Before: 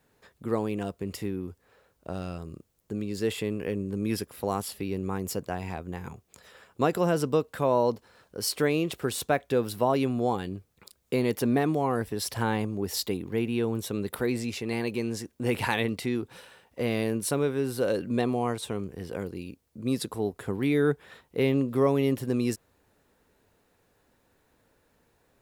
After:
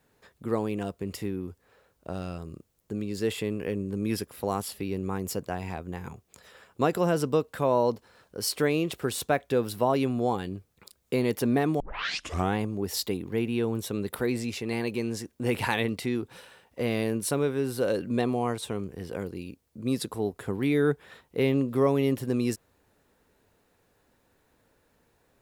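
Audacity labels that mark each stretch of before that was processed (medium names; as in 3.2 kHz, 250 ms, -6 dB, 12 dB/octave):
11.800000	11.800000	tape start 0.77 s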